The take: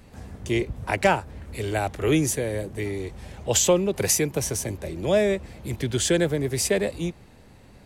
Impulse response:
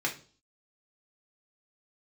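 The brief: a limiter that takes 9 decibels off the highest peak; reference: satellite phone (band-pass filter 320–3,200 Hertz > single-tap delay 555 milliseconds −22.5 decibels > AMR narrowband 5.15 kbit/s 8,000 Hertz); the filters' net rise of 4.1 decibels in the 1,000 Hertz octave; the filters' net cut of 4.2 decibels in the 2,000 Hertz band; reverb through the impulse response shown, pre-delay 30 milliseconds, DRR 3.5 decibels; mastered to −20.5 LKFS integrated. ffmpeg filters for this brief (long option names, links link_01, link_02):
-filter_complex "[0:a]equalizer=frequency=1000:width_type=o:gain=7,equalizer=frequency=2000:width_type=o:gain=-7,alimiter=limit=-15.5dB:level=0:latency=1,asplit=2[link_01][link_02];[1:a]atrim=start_sample=2205,adelay=30[link_03];[link_02][link_03]afir=irnorm=-1:irlink=0,volume=-10.5dB[link_04];[link_01][link_04]amix=inputs=2:normalize=0,highpass=320,lowpass=3200,aecho=1:1:555:0.075,volume=9.5dB" -ar 8000 -c:a libopencore_amrnb -b:a 5150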